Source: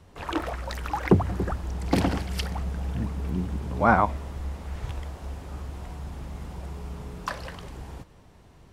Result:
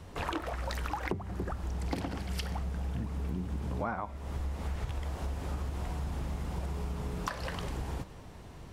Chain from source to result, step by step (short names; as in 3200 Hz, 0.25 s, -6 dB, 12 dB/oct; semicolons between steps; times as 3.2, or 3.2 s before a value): de-hum 195 Hz, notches 37; compressor 16:1, threshold -36 dBFS, peak gain reduction 24.5 dB; gain +5 dB